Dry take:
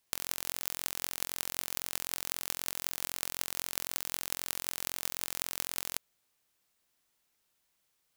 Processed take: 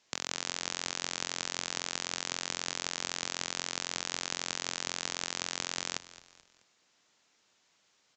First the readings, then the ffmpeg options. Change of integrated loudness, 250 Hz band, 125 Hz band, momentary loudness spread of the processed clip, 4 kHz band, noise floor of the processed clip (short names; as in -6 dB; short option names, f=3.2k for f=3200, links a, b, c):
0.0 dB, +5.5 dB, +3.0 dB, 0 LU, +5.5 dB, -72 dBFS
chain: -filter_complex "[0:a]highpass=150,asplit=2[a][b];[b]acompressor=threshold=-43dB:ratio=6,volume=-3dB[c];[a][c]amix=inputs=2:normalize=0,acrusher=bits=3:mode=log:mix=0:aa=0.000001,asoftclip=type=tanh:threshold=-5dB,asplit=4[d][e][f][g];[e]adelay=216,afreqshift=-46,volume=-17dB[h];[f]adelay=432,afreqshift=-92,volume=-24.7dB[i];[g]adelay=648,afreqshift=-138,volume=-32.5dB[j];[d][h][i][j]amix=inputs=4:normalize=0,aresample=16000,aresample=44100,volume=5.5dB"